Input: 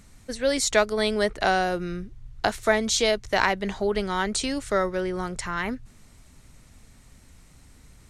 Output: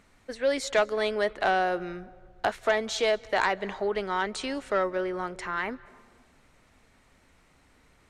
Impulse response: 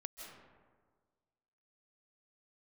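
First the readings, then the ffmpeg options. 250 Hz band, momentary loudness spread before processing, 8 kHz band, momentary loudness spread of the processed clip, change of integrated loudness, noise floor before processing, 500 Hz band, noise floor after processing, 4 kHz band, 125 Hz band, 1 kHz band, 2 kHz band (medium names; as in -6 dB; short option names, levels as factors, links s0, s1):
-7.0 dB, 9 LU, -11.5 dB, 8 LU, -3.5 dB, -53 dBFS, -2.0 dB, -62 dBFS, -6.5 dB, -10.0 dB, -1.5 dB, -3.0 dB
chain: -filter_complex "[0:a]bass=f=250:g=-13,treble=f=4000:g=-13,aeval=exprs='0.473*(cos(1*acos(clip(val(0)/0.473,-1,1)))-cos(1*PI/2))+0.0668*(cos(5*acos(clip(val(0)/0.473,-1,1)))-cos(5*PI/2))':c=same,asplit=2[s0][s1];[1:a]atrim=start_sample=2205,asetrate=39690,aresample=44100,adelay=11[s2];[s1][s2]afir=irnorm=-1:irlink=0,volume=0.178[s3];[s0][s3]amix=inputs=2:normalize=0,volume=0.562"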